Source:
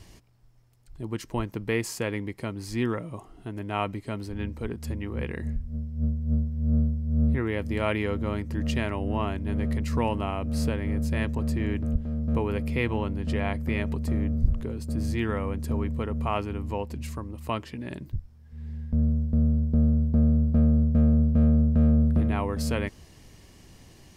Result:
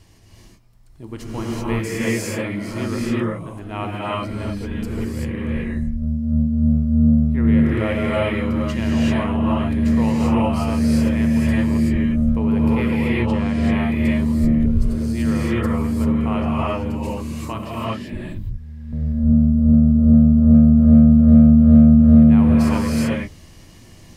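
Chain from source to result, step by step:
reverb whose tail is shaped and stops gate 410 ms rising, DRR −7 dB
level −1.5 dB

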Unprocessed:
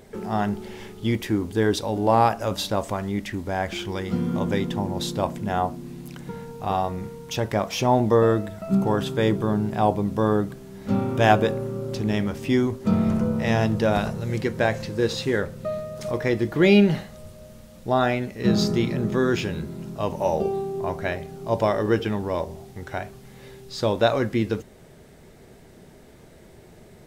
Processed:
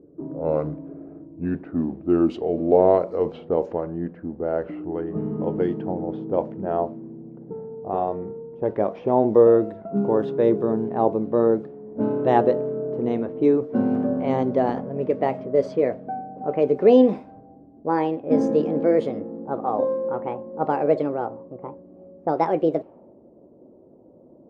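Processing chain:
gliding playback speed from 72% → 149%
resonant band-pass 420 Hz, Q 1.5
low-pass that shuts in the quiet parts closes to 400 Hz, open at −21.5 dBFS
level +5.5 dB

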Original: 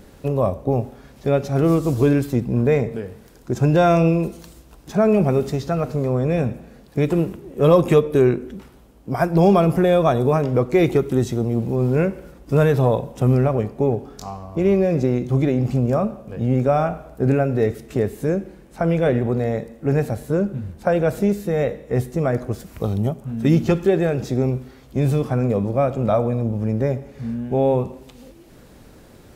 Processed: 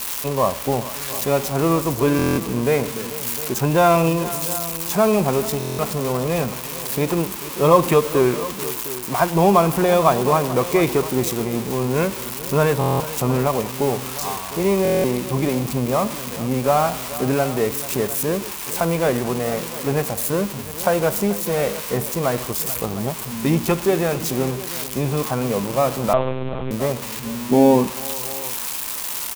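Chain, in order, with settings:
spike at every zero crossing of −14.5 dBFS
graphic EQ with 15 bands 100 Hz −8 dB, 1,000 Hz +11 dB, 2,500 Hz +4 dB
on a send: multi-tap delay 436/707 ms −16/−16 dB
0:26.13–0:26.71: on the sum: one-pitch LPC vocoder at 8 kHz 130 Hz
0:27.49–0:27.90: parametric band 260 Hz +12 dB 1.1 octaves
buffer that repeats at 0:02.17/0:05.58/0:12.79/0:14.83, samples 1,024, times 8
level −2 dB

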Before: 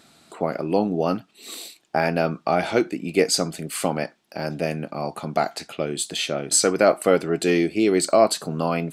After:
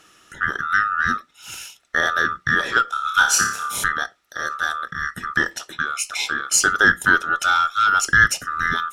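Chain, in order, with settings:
neighbouring bands swapped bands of 1,000 Hz
0:02.85–0:03.84: flutter between parallel walls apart 4.9 metres, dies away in 0.48 s
harmonic generator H 4 −31 dB, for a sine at −3 dBFS
level +1.5 dB

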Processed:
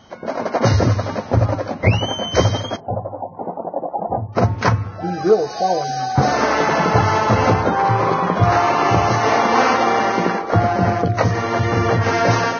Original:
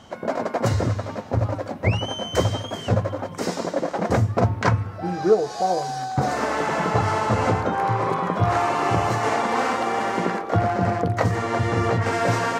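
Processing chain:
automatic gain control gain up to 12.5 dB
0:02.76–0:04.35: transistor ladder low-pass 870 Hz, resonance 70%
level −1 dB
Ogg Vorbis 16 kbit/s 16,000 Hz

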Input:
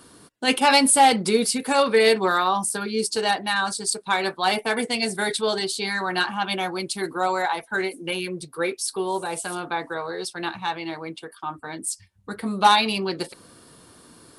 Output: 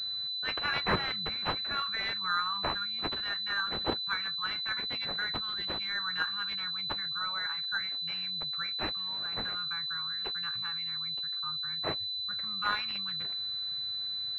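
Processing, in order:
elliptic band-stop filter 140–1,300 Hz, stop band 40 dB
switching amplifier with a slow clock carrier 4,000 Hz
level −4.5 dB

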